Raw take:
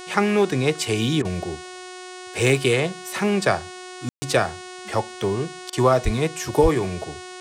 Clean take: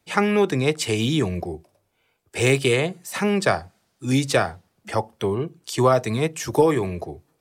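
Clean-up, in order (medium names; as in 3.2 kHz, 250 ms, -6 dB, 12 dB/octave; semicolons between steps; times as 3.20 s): de-hum 366.3 Hz, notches 27; 6.04–6.16 s: high-pass 140 Hz 24 dB/octave; 6.62–6.74 s: high-pass 140 Hz 24 dB/octave; room tone fill 4.09–4.22 s; interpolate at 1.22/5.70 s, 27 ms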